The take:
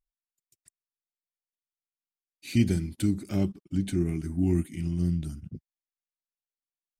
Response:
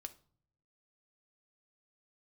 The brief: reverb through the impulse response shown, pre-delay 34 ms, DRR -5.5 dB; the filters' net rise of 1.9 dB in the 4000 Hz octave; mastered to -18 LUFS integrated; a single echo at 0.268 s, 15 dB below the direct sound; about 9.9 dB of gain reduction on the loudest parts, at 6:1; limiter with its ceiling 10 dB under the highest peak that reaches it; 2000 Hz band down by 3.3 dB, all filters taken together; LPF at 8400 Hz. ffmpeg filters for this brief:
-filter_complex "[0:a]lowpass=8.4k,equalizer=f=2k:t=o:g=-5.5,equalizer=f=4k:t=o:g=4.5,acompressor=threshold=-28dB:ratio=6,alimiter=level_in=4dB:limit=-24dB:level=0:latency=1,volume=-4dB,aecho=1:1:268:0.178,asplit=2[a][b];[1:a]atrim=start_sample=2205,adelay=34[c];[b][c]afir=irnorm=-1:irlink=0,volume=10dB[d];[a][d]amix=inputs=2:normalize=0,volume=13.5dB"

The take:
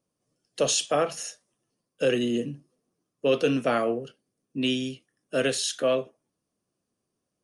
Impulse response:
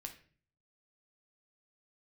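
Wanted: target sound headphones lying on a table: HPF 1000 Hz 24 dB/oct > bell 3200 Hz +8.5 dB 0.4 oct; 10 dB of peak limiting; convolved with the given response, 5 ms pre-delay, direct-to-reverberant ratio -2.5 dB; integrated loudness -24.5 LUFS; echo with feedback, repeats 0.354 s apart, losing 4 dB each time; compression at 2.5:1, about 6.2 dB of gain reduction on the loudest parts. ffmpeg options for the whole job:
-filter_complex "[0:a]acompressor=threshold=-28dB:ratio=2.5,alimiter=level_in=2.5dB:limit=-24dB:level=0:latency=1,volume=-2.5dB,aecho=1:1:354|708|1062|1416|1770|2124|2478|2832|3186:0.631|0.398|0.25|0.158|0.0994|0.0626|0.0394|0.0249|0.0157,asplit=2[a][b];[1:a]atrim=start_sample=2205,adelay=5[c];[b][c]afir=irnorm=-1:irlink=0,volume=6.5dB[d];[a][d]amix=inputs=2:normalize=0,highpass=f=1k:w=0.5412,highpass=f=1k:w=1.3066,equalizer=f=3.2k:t=o:w=0.4:g=8.5,volume=8.5dB"

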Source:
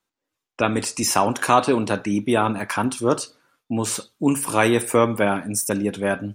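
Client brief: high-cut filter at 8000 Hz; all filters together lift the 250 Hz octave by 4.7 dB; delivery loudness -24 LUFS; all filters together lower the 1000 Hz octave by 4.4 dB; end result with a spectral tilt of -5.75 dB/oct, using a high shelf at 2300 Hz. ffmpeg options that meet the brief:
-af "lowpass=8k,equalizer=f=250:t=o:g=6,equalizer=f=1k:t=o:g=-5.5,highshelf=f=2.3k:g=-3.5,volume=-3.5dB"

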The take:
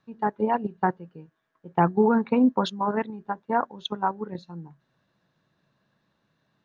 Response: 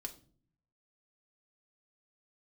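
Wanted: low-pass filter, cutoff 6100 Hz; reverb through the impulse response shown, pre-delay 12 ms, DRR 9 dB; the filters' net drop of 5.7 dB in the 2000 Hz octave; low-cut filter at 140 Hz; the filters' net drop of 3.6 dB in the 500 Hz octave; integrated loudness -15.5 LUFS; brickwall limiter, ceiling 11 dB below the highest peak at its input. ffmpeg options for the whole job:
-filter_complex "[0:a]highpass=140,lowpass=6.1k,equalizer=f=500:t=o:g=-4,equalizer=f=2k:t=o:g=-8,alimiter=limit=-21dB:level=0:latency=1,asplit=2[a][b];[1:a]atrim=start_sample=2205,adelay=12[c];[b][c]afir=irnorm=-1:irlink=0,volume=-5.5dB[d];[a][d]amix=inputs=2:normalize=0,volume=17.5dB"

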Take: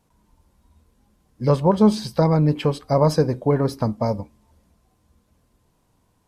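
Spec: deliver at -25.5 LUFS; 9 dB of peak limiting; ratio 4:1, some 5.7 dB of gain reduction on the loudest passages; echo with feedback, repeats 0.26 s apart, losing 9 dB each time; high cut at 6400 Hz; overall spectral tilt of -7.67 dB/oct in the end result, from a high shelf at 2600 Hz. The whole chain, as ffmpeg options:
-af "lowpass=6.4k,highshelf=f=2.6k:g=-4.5,acompressor=threshold=-18dB:ratio=4,alimiter=limit=-18dB:level=0:latency=1,aecho=1:1:260|520|780|1040:0.355|0.124|0.0435|0.0152,volume=2dB"

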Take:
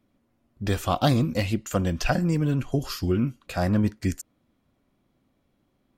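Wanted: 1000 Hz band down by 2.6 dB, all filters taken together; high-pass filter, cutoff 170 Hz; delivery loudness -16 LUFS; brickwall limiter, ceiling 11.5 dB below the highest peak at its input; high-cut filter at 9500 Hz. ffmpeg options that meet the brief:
-af "highpass=170,lowpass=9.5k,equalizer=f=1k:t=o:g=-4,volume=15dB,alimiter=limit=-4dB:level=0:latency=1"

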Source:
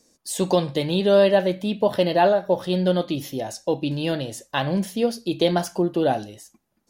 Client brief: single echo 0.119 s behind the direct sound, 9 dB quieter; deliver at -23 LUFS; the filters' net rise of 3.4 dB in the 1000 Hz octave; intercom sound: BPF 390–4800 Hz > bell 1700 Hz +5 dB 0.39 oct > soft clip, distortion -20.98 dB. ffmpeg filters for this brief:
-af "highpass=390,lowpass=4.8k,equalizer=f=1k:t=o:g=5,equalizer=f=1.7k:t=o:w=0.39:g=5,aecho=1:1:119:0.355,asoftclip=threshold=-7.5dB"

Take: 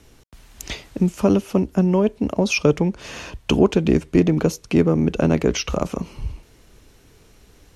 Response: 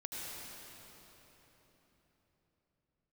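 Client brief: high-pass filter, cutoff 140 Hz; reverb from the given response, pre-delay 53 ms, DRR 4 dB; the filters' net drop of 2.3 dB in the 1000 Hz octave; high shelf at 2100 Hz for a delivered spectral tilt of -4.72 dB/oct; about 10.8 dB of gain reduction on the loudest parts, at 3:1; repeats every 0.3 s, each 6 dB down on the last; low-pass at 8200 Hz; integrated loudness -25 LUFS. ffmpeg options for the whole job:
-filter_complex "[0:a]highpass=140,lowpass=8.2k,equalizer=f=1k:t=o:g=-4.5,highshelf=f=2.1k:g=6.5,acompressor=threshold=-26dB:ratio=3,aecho=1:1:300|600|900|1200|1500|1800:0.501|0.251|0.125|0.0626|0.0313|0.0157,asplit=2[a][b];[1:a]atrim=start_sample=2205,adelay=53[c];[b][c]afir=irnorm=-1:irlink=0,volume=-4.5dB[d];[a][d]amix=inputs=2:normalize=0,volume=1.5dB"

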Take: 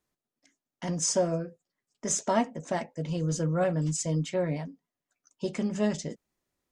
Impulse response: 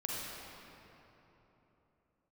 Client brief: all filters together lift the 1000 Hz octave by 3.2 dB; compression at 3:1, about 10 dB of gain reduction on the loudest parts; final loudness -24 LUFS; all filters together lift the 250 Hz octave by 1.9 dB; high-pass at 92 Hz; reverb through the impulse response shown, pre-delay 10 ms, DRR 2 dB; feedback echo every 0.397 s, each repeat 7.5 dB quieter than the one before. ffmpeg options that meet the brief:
-filter_complex "[0:a]highpass=92,equalizer=f=250:t=o:g=3,equalizer=f=1k:t=o:g=4,acompressor=threshold=-32dB:ratio=3,aecho=1:1:397|794|1191|1588|1985:0.422|0.177|0.0744|0.0312|0.0131,asplit=2[a][b];[1:a]atrim=start_sample=2205,adelay=10[c];[b][c]afir=irnorm=-1:irlink=0,volume=-5.5dB[d];[a][d]amix=inputs=2:normalize=0,volume=9.5dB"

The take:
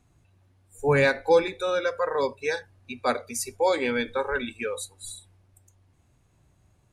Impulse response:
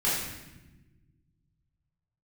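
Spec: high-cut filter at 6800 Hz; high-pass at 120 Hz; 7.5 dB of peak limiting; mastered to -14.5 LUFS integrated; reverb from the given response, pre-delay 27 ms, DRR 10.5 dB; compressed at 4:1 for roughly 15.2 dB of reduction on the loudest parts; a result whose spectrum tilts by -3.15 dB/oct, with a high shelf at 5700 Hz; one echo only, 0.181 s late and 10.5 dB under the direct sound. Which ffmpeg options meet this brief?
-filter_complex "[0:a]highpass=120,lowpass=6.8k,highshelf=f=5.7k:g=3,acompressor=threshold=-33dB:ratio=4,alimiter=level_in=4dB:limit=-24dB:level=0:latency=1,volume=-4dB,aecho=1:1:181:0.299,asplit=2[a][b];[1:a]atrim=start_sample=2205,adelay=27[c];[b][c]afir=irnorm=-1:irlink=0,volume=-21.5dB[d];[a][d]amix=inputs=2:normalize=0,volume=23.5dB"

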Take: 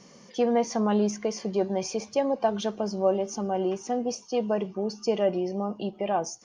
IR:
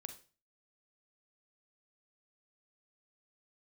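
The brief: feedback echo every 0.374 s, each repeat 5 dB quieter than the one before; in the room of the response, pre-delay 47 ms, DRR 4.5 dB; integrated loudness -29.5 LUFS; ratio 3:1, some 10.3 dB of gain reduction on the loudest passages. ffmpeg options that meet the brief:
-filter_complex "[0:a]acompressor=threshold=-33dB:ratio=3,aecho=1:1:374|748|1122|1496|1870|2244|2618:0.562|0.315|0.176|0.0988|0.0553|0.031|0.0173,asplit=2[a][b];[1:a]atrim=start_sample=2205,adelay=47[c];[b][c]afir=irnorm=-1:irlink=0,volume=0dB[d];[a][d]amix=inputs=2:normalize=0,volume=3dB"

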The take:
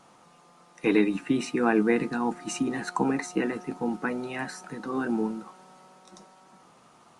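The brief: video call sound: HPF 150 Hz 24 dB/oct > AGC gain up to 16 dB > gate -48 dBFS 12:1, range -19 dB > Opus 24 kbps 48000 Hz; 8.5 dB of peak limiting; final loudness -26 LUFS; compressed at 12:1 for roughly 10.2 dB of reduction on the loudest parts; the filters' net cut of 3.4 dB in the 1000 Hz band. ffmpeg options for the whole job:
-af "equalizer=f=1k:t=o:g=-4.5,acompressor=threshold=-28dB:ratio=12,alimiter=level_in=3dB:limit=-24dB:level=0:latency=1,volume=-3dB,highpass=f=150:w=0.5412,highpass=f=150:w=1.3066,dynaudnorm=m=16dB,agate=range=-19dB:threshold=-48dB:ratio=12,volume=11dB" -ar 48000 -c:a libopus -b:a 24k

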